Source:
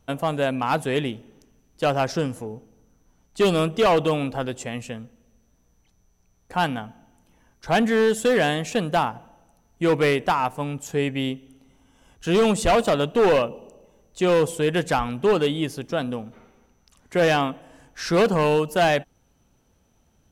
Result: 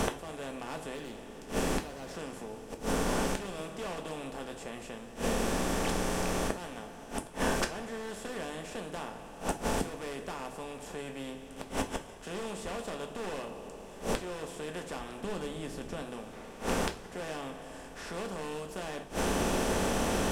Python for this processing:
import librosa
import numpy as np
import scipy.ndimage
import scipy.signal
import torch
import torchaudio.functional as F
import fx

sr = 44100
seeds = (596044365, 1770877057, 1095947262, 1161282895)

y = fx.bin_compress(x, sr, power=0.4)
y = fx.overload_stage(y, sr, gain_db=15.0, at=(0.95, 2.12))
y = fx.low_shelf(y, sr, hz=190.0, db=11.0, at=(15.22, 16.02))
y = fx.gate_flip(y, sr, shuts_db=-18.0, range_db=-29)
y = fx.bass_treble(y, sr, bass_db=2, treble_db=4)
y = fx.rev_double_slope(y, sr, seeds[0], early_s=0.28, late_s=2.2, knee_db=-21, drr_db=4.0)
y = fx.band_squash(y, sr, depth_pct=40)